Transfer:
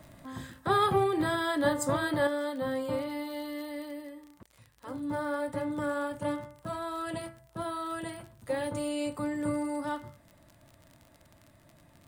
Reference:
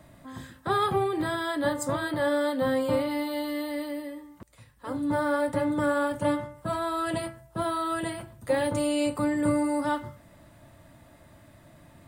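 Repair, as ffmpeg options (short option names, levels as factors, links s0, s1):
-af "adeclick=t=4,asetnsamples=n=441:p=0,asendcmd='2.27 volume volume 6.5dB',volume=1"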